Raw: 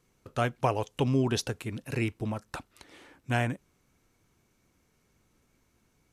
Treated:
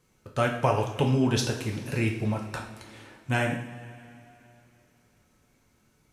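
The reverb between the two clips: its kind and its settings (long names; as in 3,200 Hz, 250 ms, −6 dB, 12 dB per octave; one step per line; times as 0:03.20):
coupled-rooms reverb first 0.55 s, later 3.1 s, from −16 dB, DRR 0.5 dB
level +1 dB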